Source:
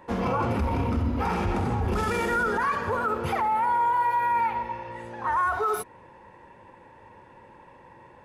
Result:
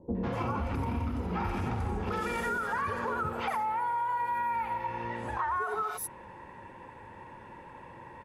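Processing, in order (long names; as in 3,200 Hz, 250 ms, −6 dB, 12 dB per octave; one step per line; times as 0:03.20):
three-band delay without the direct sound lows, mids, highs 150/240 ms, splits 520/5,200 Hz
downward compressor 6 to 1, threshold −33 dBFS, peak gain reduction 11.5 dB
level +3.5 dB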